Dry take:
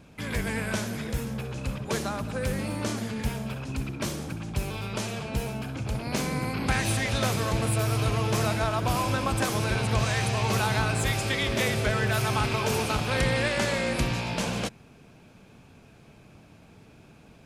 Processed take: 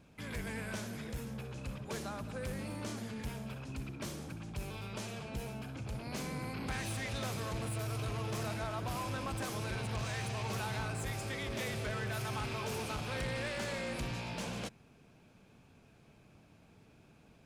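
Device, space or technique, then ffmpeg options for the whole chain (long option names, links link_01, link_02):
saturation between pre-emphasis and de-emphasis: -filter_complex "[0:a]asettb=1/sr,asplit=3[link_01][link_02][link_03];[link_01]atrim=end=10.874[link_04];[link_02]atrim=start=10.87:end=11.53,asetpts=PTS-STARTPTS,afade=type=in:duration=0.004:curve=qsin,afade=type=out:start_time=0.656:duration=0.004:curve=qsin,equalizer=frequency=3300:width_type=o:width=1.2:gain=-4.5[link_05];[link_03]atrim=start=11.526[link_06];[link_04][link_05]acrossfade=duration=0.004:curve1=hsin:curve2=qsin[link_07];[link_07][link_06]acrossfade=duration=0.004:curve1=qsin:curve2=hsin,highshelf=frequency=6100:gain=8.5,asoftclip=type=tanh:threshold=-22.5dB,highshelf=frequency=6100:gain=-8.5,volume=-9dB"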